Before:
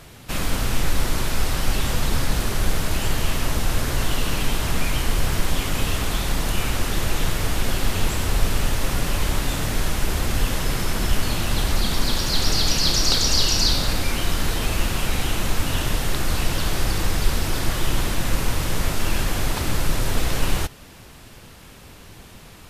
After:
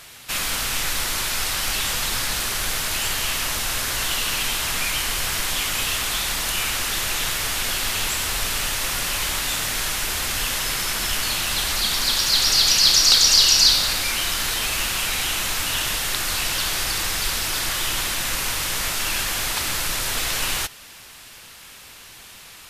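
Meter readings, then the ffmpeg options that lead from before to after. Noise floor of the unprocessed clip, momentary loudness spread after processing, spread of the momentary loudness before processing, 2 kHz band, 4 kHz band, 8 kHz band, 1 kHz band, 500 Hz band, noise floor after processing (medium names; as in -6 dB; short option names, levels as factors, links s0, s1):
-44 dBFS, 9 LU, 6 LU, +4.5 dB, +6.5 dB, +7.0 dB, 0.0 dB, -5.5 dB, -44 dBFS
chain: -af "tiltshelf=f=750:g=-9.5,volume=0.75"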